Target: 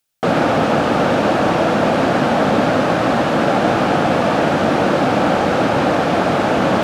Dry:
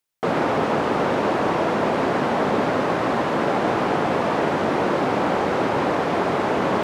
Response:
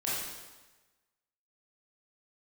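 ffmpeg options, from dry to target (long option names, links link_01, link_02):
-af "equalizer=frequency=400:width_type=o:width=0.33:gain=-9,equalizer=frequency=1000:width_type=o:width=0.33:gain=-8,equalizer=frequency=2000:width_type=o:width=0.33:gain=-5,volume=8dB"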